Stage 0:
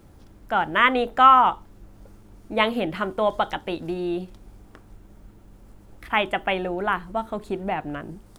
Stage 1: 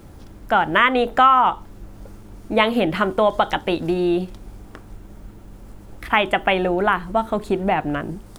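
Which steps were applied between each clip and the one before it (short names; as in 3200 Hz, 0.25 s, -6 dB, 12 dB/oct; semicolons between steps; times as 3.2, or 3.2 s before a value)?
compressor 2.5:1, threshold -22 dBFS, peak gain reduction 9.5 dB; gain +8 dB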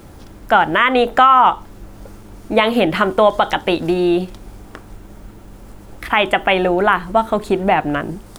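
low shelf 300 Hz -4.5 dB; maximiser +7 dB; gain -1 dB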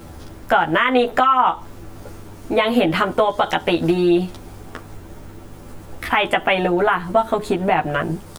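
compressor 2.5:1, threshold -17 dBFS, peak gain reduction 7.5 dB; doubler 12 ms -2 dB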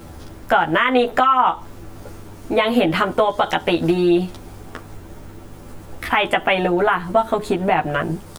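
nothing audible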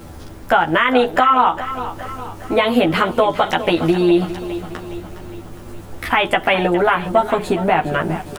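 feedback echo 0.411 s, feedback 54%, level -13 dB; gain +1.5 dB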